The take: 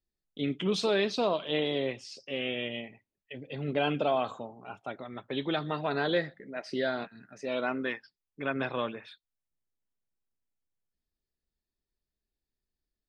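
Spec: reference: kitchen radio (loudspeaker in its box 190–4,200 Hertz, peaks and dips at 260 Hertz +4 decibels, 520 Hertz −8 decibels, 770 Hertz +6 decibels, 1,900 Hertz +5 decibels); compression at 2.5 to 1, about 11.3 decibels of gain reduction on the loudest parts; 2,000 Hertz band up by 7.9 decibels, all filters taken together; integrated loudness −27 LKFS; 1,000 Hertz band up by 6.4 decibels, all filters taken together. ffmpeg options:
ffmpeg -i in.wav -af "equalizer=frequency=1000:width_type=o:gain=4,equalizer=frequency=2000:width_type=o:gain=5.5,acompressor=threshold=-39dB:ratio=2.5,highpass=190,equalizer=frequency=260:width_type=q:width=4:gain=4,equalizer=frequency=520:width_type=q:width=4:gain=-8,equalizer=frequency=770:width_type=q:width=4:gain=6,equalizer=frequency=1900:width_type=q:width=4:gain=5,lowpass=frequency=4200:width=0.5412,lowpass=frequency=4200:width=1.3066,volume=12dB" out.wav

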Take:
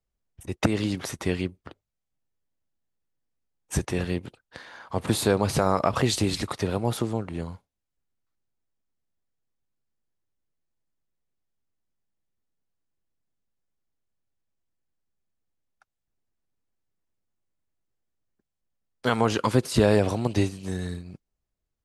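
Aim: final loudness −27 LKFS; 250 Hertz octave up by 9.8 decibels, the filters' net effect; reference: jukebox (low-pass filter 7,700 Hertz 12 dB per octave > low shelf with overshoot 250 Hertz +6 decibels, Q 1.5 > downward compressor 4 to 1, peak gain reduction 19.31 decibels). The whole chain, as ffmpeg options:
ffmpeg -i in.wav -af "lowpass=7700,lowshelf=frequency=250:width_type=q:width=1.5:gain=6,equalizer=frequency=250:width_type=o:gain=7,acompressor=threshold=-30dB:ratio=4,volume=6.5dB" out.wav

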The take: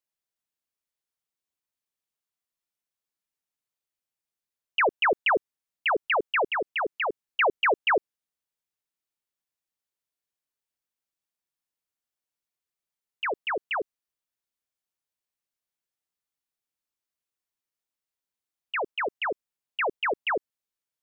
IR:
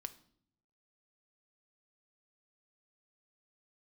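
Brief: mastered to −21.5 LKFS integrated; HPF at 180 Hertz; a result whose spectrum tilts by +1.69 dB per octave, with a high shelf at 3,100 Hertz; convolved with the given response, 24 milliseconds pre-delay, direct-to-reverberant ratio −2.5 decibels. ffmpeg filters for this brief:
-filter_complex "[0:a]highpass=180,highshelf=frequency=3100:gain=-7,asplit=2[link_01][link_02];[1:a]atrim=start_sample=2205,adelay=24[link_03];[link_02][link_03]afir=irnorm=-1:irlink=0,volume=6dB[link_04];[link_01][link_04]amix=inputs=2:normalize=0,volume=2.5dB"

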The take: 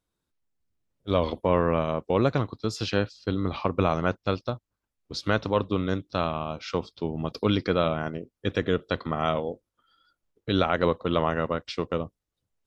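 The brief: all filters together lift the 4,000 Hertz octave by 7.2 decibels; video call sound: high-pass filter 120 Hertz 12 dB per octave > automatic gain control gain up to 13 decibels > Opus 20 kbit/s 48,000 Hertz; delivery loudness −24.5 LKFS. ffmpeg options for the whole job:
ffmpeg -i in.wav -af "highpass=120,equalizer=frequency=4000:width_type=o:gain=9,dynaudnorm=maxgain=13dB,volume=3dB" -ar 48000 -c:a libopus -b:a 20k out.opus

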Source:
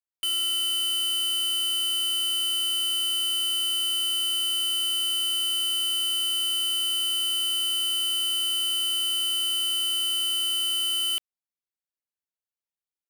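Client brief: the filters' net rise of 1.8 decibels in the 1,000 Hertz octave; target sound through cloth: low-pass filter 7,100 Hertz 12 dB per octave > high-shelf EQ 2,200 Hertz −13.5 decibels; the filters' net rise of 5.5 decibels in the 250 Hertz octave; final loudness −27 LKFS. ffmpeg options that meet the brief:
ffmpeg -i in.wav -af "lowpass=7100,equalizer=frequency=250:width_type=o:gain=8.5,equalizer=frequency=1000:width_type=o:gain=8.5,highshelf=frequency=2200:gain=-13.5,volume=5dB" out.wav

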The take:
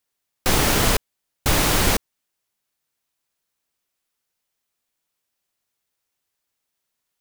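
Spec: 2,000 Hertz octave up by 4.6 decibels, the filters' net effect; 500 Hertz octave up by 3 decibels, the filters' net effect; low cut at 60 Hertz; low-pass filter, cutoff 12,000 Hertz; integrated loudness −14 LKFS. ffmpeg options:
ffmpeg -i in.wav -af "highpass=60,lowpass=12000,equalizer=frequency=500:width_type=o:gain=3.5,equalizer=frequency=2000:width_type=o:gain=5.5,volume=5dB" out.wav

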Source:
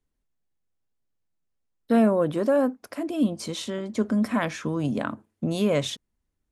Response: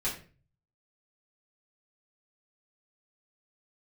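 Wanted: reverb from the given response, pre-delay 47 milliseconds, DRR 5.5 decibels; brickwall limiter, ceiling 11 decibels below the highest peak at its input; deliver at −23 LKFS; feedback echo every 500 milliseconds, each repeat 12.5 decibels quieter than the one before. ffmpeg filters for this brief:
-filter_complex "[0:a]alimiter=limit=-21dB:level=0:latency=1,aecho=1:1:500|1000|1500:0.237|0.0569|0.0137,asplit=2[link_01][link_02];[1:a]atrim=start_sample=2205,adelay=47[link_03];[link_02][link_03]afir=irnorm=-1:irlink=0,volume=-11dB[link_04];[link_01][link_04]amix=inputs=2:normalize=0,volume=6dB"

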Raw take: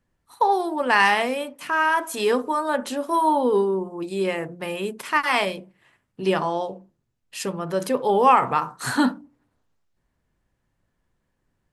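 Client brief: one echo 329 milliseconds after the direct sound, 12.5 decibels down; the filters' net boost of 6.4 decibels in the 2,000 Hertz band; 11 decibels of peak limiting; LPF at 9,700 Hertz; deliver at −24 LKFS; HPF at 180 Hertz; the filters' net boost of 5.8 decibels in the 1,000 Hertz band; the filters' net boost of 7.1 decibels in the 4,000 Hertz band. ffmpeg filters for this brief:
ffmpeg -i in.wav -af "highpass=180,lowpass=9700,equalizer=frequency=1000:width_type=o:gain=5.5,equalizer=frequency=2000:width_type=o:gain=4.5,equalizer=frequency=4000:width_type=o:gain=7.5,alimiter=limit=-9dB:level=0:latency=1,aecho=1:1:329:0.237,volume=-3.5dB" out.wav

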